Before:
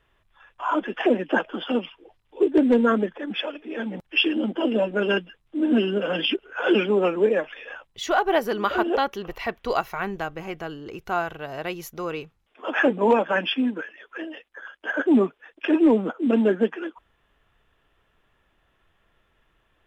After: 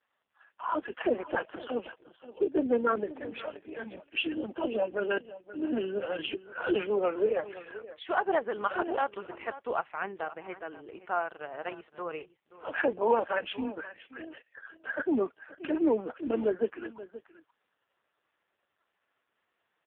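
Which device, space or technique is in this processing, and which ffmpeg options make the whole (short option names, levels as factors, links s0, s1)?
satellite phone: -filter_complex "[0:a]asplit=3[s0][s1][s2];[s0]afade=t=out:st=10.61:d=0.02[s3];[s1]highpass=120,afade=t=in:st=10.61:d=0.02,afade=t=out:st=11.25:d=0.02[s4];[s2]afade=t=in:st=11.25:d=0.02[s5];[s3][s4][s5]amix=inputs=3:normalize=0,highpass=370,lowpass=3000,aecho=1:1:527:0.158,volume=0.596" -ar 8000 -c:a libopencore_amrnb -b:a 4750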